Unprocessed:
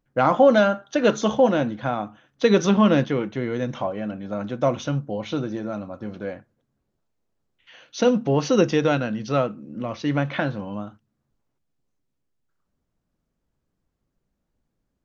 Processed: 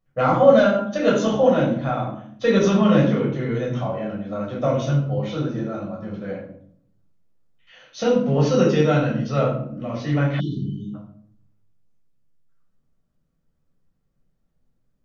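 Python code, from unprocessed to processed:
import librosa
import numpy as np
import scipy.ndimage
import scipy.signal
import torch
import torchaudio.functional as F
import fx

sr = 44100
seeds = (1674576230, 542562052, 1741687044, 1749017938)

y = fx.room_shoebox(x, sr, seeds[0], volume_m3=880.0, walls='furnished', distance_m=6.2)
y = fx.spec_erase(y, sr, start_s=10.4, length_s=0.54, low_hz=440.0, high_hz=2900.0)
y = F.gain(torch.from_numpy(y), -7.5).numpy()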